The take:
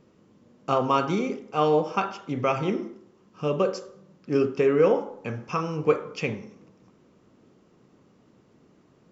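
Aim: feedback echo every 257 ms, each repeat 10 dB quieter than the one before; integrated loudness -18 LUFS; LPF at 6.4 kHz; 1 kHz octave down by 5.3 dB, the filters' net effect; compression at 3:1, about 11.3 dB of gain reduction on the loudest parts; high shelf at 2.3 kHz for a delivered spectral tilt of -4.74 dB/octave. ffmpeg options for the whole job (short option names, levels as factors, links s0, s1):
-af "lowpass=6400,equalizer=f=1000:t=o:g=-9,highshelf=f=2300:g=8,acompressor=threshold=0.0251:ratio=3,aecho=1:1:257|514|771|1028:0.316|0.101|0.0324|0.0104,volume=7.08"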